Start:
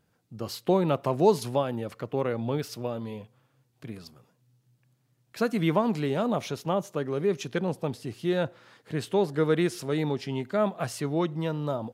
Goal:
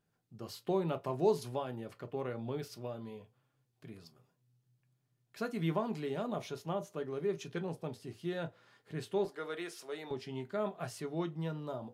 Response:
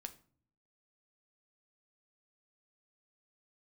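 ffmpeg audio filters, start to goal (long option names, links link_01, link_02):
-filter_complex "[0:a]asettb=1/sr,asplit=3[link_01][link_02][link_03];[link_01]atrim=end=9.254[link_04];[link_02]atrim=start=9.25:end=10.11,asetpts=PTS-STARTPTS,afade=type=in:duration=0.004:curve=qsin,afade=type=out:start_time=0.856:duration=0.004:curve=qsin,highpass=500[link_05];[link_03]atrim=start=10.106[link_06];[link_04][link_05]acrossfade=duration=0.004:curve1=hsin:curve2=qsin[link_07];[link_07][link_06]acrossfade=duration=0.004:curve1=qsin:curve2=hsin[link_08];[1:a]atrim=start_sample=2205,atrim=end_sample=4410,asetrate=83790,aresample=44100[link_09];[link_08][link_09]afir=irnorm=-1:irlink=0"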